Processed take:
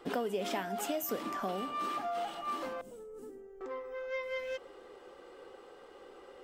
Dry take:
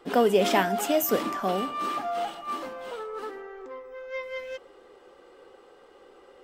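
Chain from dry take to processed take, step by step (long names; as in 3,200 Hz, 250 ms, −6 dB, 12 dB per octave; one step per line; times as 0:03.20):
0:02.81–0:03.61: drawn EQ curve 240 Hz 0 dB, 1,100 Hz −27 dB, 4,100 Hz −24 dB, 7,400 Hz −4 dB
downward compressor 4 to 1, threshold −34 dBFS, peak gain reduction 15 dB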